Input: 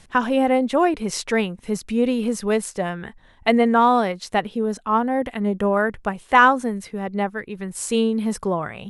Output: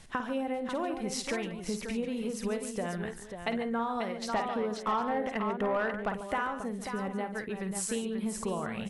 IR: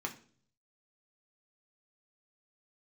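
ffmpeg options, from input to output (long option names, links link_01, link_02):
-filter_complex "[0:a]acompressor=threshold=-28dB:ratio=6,aecho=1:1:52|143|539|753:0.335|0.251|0.422|0.119,asettb=1/sr,asplit=3[link_01][link_02][link_03];[link_01]atrim=end=4.294[link_04];[link_02]atrim=start=4.29:end=6.14,asetpts=PTS-STARTPTS,afade=type=in:duration=0.004:curve=qsin,afade=type=out:start_time=1.846:duration=0.004:curve=qsin,asplit=2[link_05][link_06];[link_06]highpass=frequency=720:poles=1,volume=15dB,asoftclip=type=tanh:threshold=-16dB[link_07];[link_05][link_07]amix=inputs=2:normalize=0,lowpass=frequency=2000:poles=1,volume=-6dB[link_08];[link_03]atrim=start=6.136[link_09];[link_04][link_08]acrossfade=duration=0.004:curve1=hsin:curve2=qsin[link_10];[link_10][link_09]acrossfade=duration=0.004:curve1=qsin:curve2=hsin,volume=-3.5dB"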